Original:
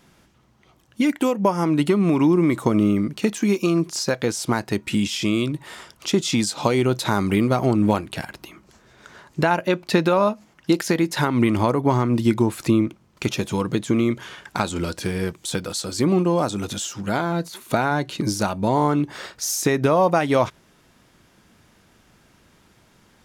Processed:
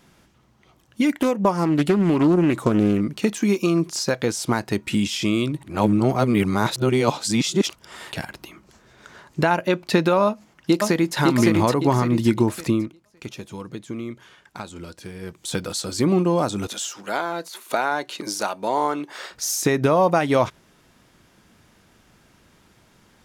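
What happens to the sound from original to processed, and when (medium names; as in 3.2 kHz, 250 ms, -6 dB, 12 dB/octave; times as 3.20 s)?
1.21–3.01 s: loudspeaker Doppler distortion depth 0.3 ms
5.63–8.12 s: reverse
10.25–11.17 s: echo throw 560 ms, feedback 40%, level -1.5 dB
12.60–15.57 s: dip -11.5 dB, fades 0.36 s
16.67–19.31 s: high-pass 440 Hz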